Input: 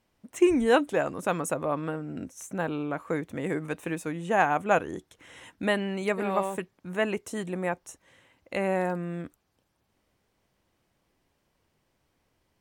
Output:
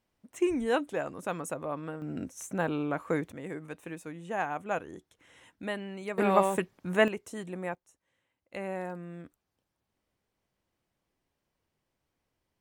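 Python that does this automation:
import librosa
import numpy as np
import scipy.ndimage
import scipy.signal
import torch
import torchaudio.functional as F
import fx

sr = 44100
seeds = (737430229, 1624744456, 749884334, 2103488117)

y = fx.gain(x, sr, db=fx.steps((0.0, -6.5), (2.02, 0.0), (3.32, -9.0), (6.18, 3.5), (7.08, -6.0), (7.75, -18.5), (8.54, -9.0)))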